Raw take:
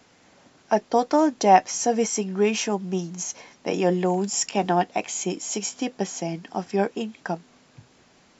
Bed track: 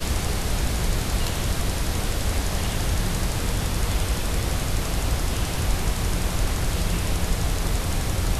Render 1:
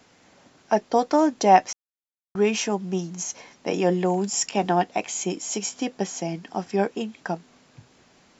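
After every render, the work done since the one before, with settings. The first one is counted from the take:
0:01.73–0:02.35: silence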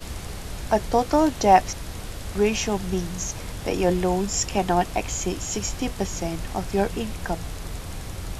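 mix in bed track −9.5 dB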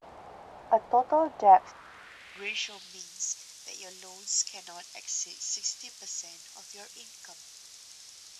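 band-pass filter sweep 760 Hz → 5,800 Hz, 0:01.41–0:03.03
pitch vibrato 0.33 Hz 54 cents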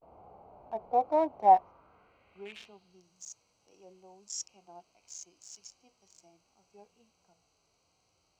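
adaptive Wiener filter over 25 samples
harmonic and percussive parts rebalanced percussive −16 dB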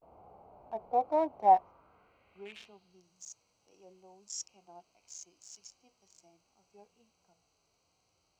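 level −2 dB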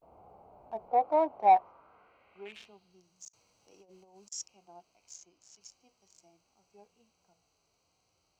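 0:00.88–0:02.49: mid-hump overdrive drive 11 dB, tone 1,900 Hz, clips at −12 dBFS
0:03.28–0:04.32: compressor whose output falls as the input rises −59 dBFS, ratio −0.5
0:05.16–0:05.61: high-shelf EQ 5,100 Hz −11 dB

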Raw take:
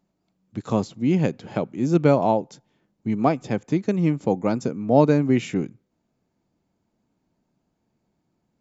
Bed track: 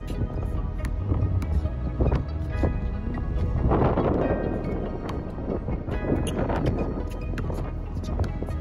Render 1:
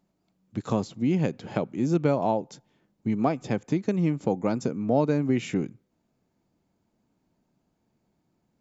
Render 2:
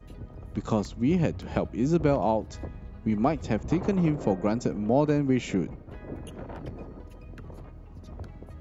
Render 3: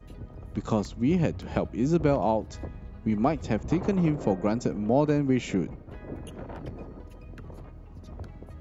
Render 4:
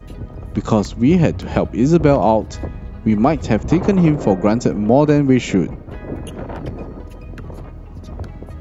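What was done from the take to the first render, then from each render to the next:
downward compressor 2 to 1, threshold −23 dBFS, peak gain reduction 8 dB
mix in bed track −14 dB
no processing that can be heard
level +11 dB; brickwall limiter −1 dBFS, peak gain reduction 2 dB

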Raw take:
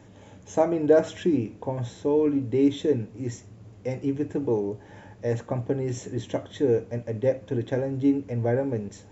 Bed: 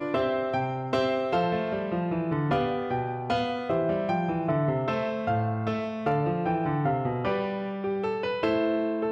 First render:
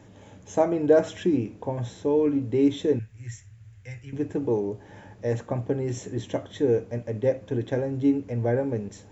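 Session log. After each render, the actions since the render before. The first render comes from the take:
0:02.99–0:04.13: drawn EQ curve 110 Hz 0 dB, 210 Hz −21 dB, 320 Hz −24 dB, 1,100 Hz −14 dB, 1,700 Hz +2 dB, 4,600 Hz −6 dB, 9,600 Hz +2 dB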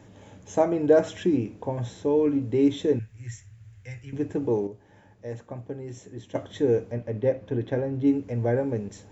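0:04.67–0:06.35: clip gain −9 dB
0:06.92–0:08.07: high-frequency loss of the air 130 metres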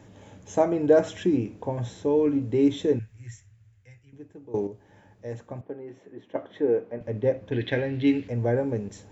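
0:02.91–0:04.54: fade out quadratic, to −18.5 dB
0:05.61–0:07.01: band-pass filter 260–2,100 Hz
0:07.52–0:08.28: flat-topped bell 2,800 Hz +15 dB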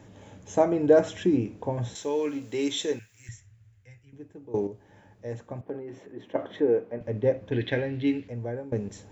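0:01.95–0:03.29: spectral tilt +4.5 dB per octave
0:05.67–0:06.64: transient designer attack +2 dB, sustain +6 dB
0:07.58–0:08.72: fade out linear, to −14 dB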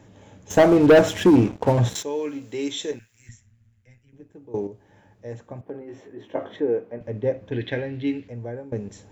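0:00.50–0:02.03: leveller curve on the samples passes 3
0:02.91–0:04.33: amplitude modulation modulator 120 Hz, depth 40%
0:05.79–0:06.56: double-tracking delay 19 ms −3.5 dB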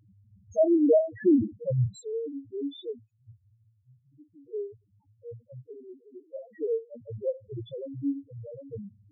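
spectral peaks only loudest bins 1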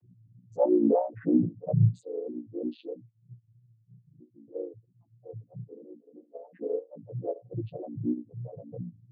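channel vocoder with a chord as carrier major triad, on A#2
pitch vibrato 3.1 Hz 83 cents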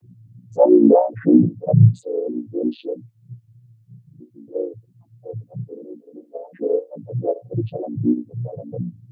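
level +11 dB
brickwall limiter −2 dBFS, peak gain reduction 1 dB

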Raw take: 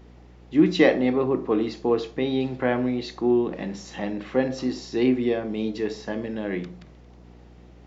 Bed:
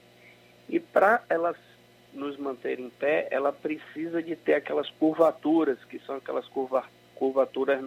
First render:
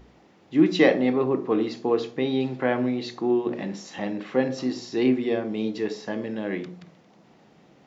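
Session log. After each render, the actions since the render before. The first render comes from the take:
hum removal 60 Hz, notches 11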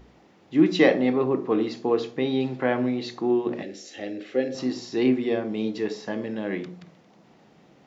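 0:03.62–0:04.55: phaser with its sweep stopped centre 410 Hz, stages 4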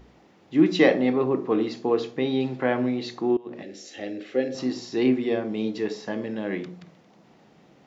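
0:03.37–0:03.83: fade in, from −22 dB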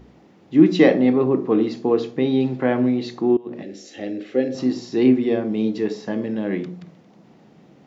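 parametric band 190 Hz +7 dB 2.7 octaves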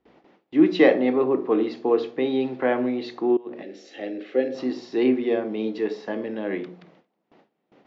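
three-way crossover with the lows and the highs turned down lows −16 dB, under 290 Hz, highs −20 dB, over 4,600 Hz
noise gate with hold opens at −45 dBFS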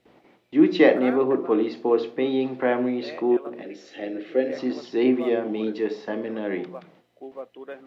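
mix in bed −13.5 dB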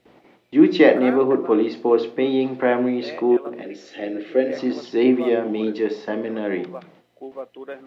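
level +3.5 dB
brickwall limiter −2 dBFS, peak gain reduction 1.5 dB

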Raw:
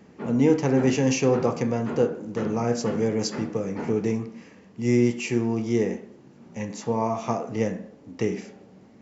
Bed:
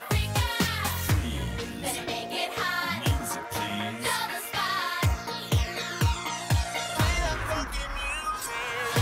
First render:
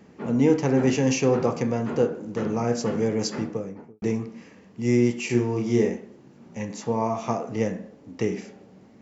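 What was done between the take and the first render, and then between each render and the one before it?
0:03.37–0:04.02: fade out and dull
0:05.26–0:05.90: double-tracking delay 33 ms −3 dB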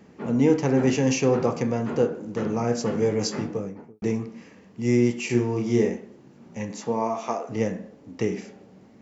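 0:03.00–0:03.70: double-tracking delay 20 ms −6 dB
0:06.72–0:07.48: high-pass filter 110 Hz → 440 Hz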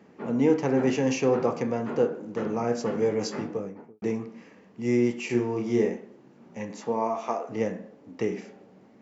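high-pass filter 260 Hz 6 dB per octave
high-shelf EQ 3,600 Hz −9 dB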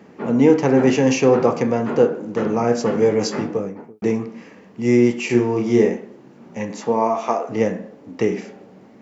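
level +8.5 dB
brickwall limiter −3 dBFS, peak gain reduction 1 dB

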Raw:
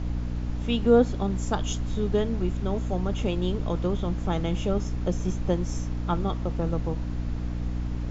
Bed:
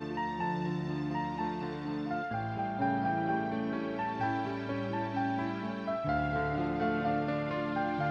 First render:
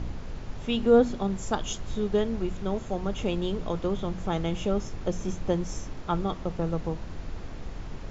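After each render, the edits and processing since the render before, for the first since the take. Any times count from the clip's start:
hum removal 60 Hz, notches 5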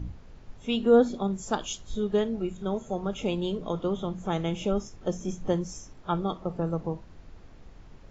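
noise reduction from a noise print 12 dB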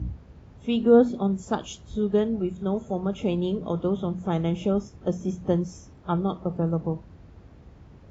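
high-pass filter 59 Hz 24 dB per octave
spectral tilt −2 dB per octave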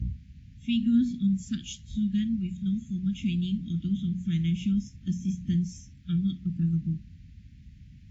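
inverse Chebyshev band-stop filter 420–1,100 Hz, stop band 50 dB
dynamic equaliser 330 Hz, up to +4 dB, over −44 dBFS, Q 1.3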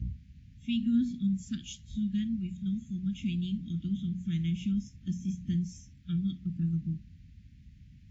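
level −4 dB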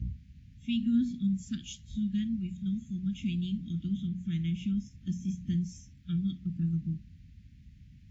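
0:04.07–0:04.91: bass and treble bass −1 dB, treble −4 dB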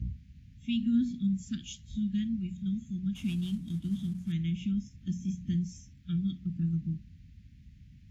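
0:03.15–0:04.32: variable-slope delta modulation 64 kbit/s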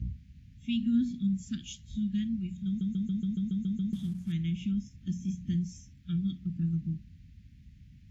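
0:02.67: stutter in place 0.14 s, 9 plays

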